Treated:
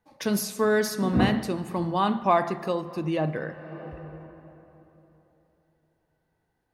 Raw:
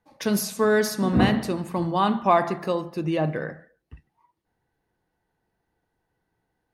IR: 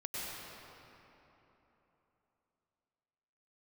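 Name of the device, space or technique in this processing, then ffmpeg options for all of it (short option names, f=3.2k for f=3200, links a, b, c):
ducked reverb: -filter_complex "[0:a]asplit=3[a][b][c];[1:a]atrim=start_sample=2205[d];[b][d]afir=irnorm=-1:irlink=0[e];[c]apad=whole_len=297144[f];[e][f]sidechaincompress=threshold=-38dB:ratio=8:attack=46:release=374,volume=-8dB[g];[a][g]amix=inputs=2:normalize=0,volume=-2.5dB"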